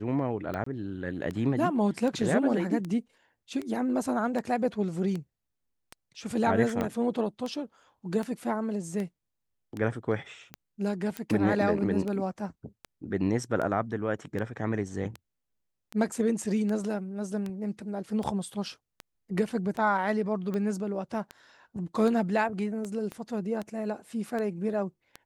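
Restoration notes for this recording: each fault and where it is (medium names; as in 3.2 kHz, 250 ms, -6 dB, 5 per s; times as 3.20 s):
tick 78 rpm -22 dBFS
0.64–0.66 s: dropout 24 ms
6.81 s: pop -17 dBFS
11.17 s: pop -18 dBFS
23.12 s: pop -24 dBFS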